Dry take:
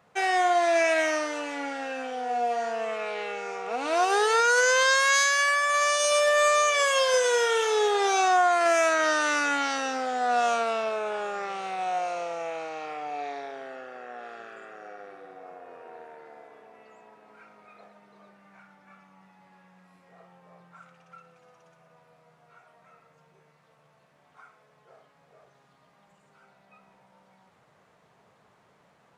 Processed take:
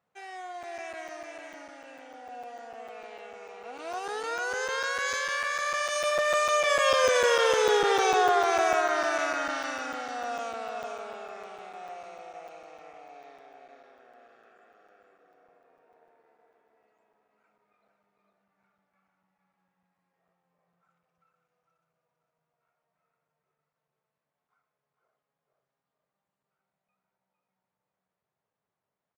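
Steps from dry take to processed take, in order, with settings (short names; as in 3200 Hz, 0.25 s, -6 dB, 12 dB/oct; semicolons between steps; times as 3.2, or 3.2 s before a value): Doppler pass-by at 7.46, 5 m/s, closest 4.6 m; on a send: echo 0.539 s -11 dB; on the sum: dynamic EQ 8300 Hz, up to -5 dB, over -48 dBFS, Q 1.2; echo 0.454 s -5.5 dB; crackling interface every 0.15 s, samples 256, zero, from 0.63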